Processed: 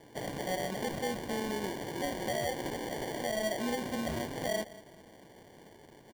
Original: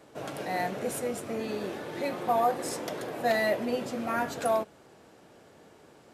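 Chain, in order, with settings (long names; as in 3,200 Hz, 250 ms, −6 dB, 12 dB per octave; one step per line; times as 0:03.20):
in parallel at −2.5 dB: downward compressor, threshold −35 dBFS, peak gain reduction 13.5 dB
on the sum: repeating echo 208 ms, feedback 42%, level −22 dB
brickwall limiter −20 dBFS, peak gain reduction 7 dB
parametric band 2,500 Hz −5.5 dB 2.8 octaves
decimation without filtering 34×
level −3.5 dB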